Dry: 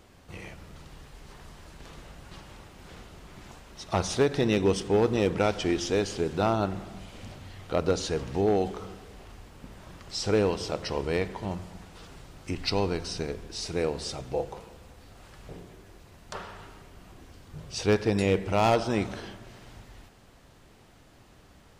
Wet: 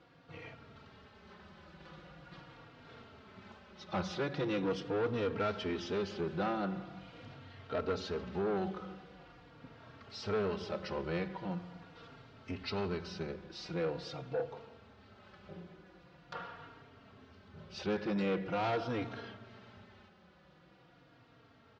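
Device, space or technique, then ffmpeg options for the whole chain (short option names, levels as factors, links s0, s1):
barber-pole flanger into a guitar amplifier: -filter_complex "[0:a]asplit=2[s0][s1];[s1]adelay=3.7,afreqshift=-0.43[s2];[s0][s2]amix=inputs=2:normalize=1,asoftclip=type=tanh:threshold=0.0473,highpass=100,equalizer=f=180:t=q:w=4:g=5,equalizer=f=520:t=q:w=4:g=3,equalizer=f=1400:t=q:w=4:g=6,lowpass=f=4500:w=0.5412,lowpass=f=4500:w=1.3066,volume=0.668"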